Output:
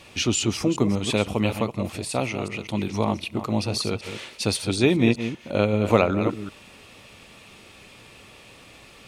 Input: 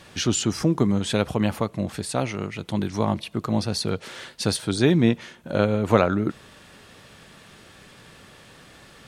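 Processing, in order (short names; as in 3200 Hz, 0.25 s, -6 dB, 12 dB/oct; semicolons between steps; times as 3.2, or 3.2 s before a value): reverse delay 0.191 s, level -9.5 dB; thirty-one-band EQ 160 Hz -8 dB, 1600 Hz -9 dB, 2500 Hz +8 dB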